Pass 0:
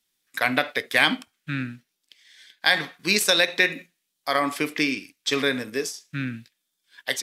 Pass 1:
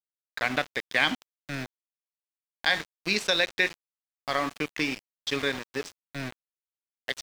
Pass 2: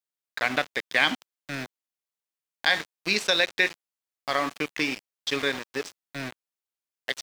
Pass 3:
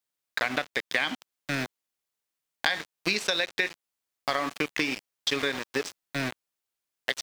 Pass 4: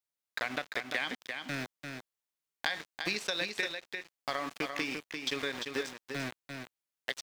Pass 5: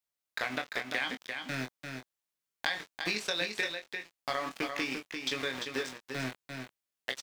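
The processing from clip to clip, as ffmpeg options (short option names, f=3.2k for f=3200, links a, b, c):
-filter_complex "[0:a]aeval=exprs='val(0)*gte(abs(val(0)),0.0501)':c=same,acrossover=split=6500[a][b];[b]acompressor=threshold=-48dB:ratio=4:attack=1:release=60[c];[a][c]amix=inputs=2:normalize=0,volume=-4.5dB"
-af "lowshelf=f=130:g=-9,volume=2dB"
-af "acompressor=threshold=-29dB:ratio=6,volume=5.5dB"
-af "aecho=1:1:345:0.501,volume=-7dB"
-filter_complex "[0:a]asplit=2[a][b];[b]adelay=23,volume=-6.5dB[c];[a][c]amix=inputs=2:normalize=0"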